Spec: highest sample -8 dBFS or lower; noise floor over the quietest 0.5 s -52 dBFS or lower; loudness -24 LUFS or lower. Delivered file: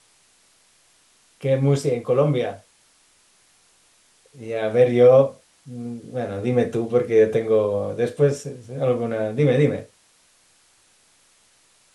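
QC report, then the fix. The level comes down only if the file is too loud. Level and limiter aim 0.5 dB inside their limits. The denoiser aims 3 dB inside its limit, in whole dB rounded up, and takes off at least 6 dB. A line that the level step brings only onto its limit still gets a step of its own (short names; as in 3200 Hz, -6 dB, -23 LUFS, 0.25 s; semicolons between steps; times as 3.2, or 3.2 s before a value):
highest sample -5.0 dBFS: fail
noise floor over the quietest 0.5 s -59 dBFS: OK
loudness -20.5 LUFS: fail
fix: gain -4 dB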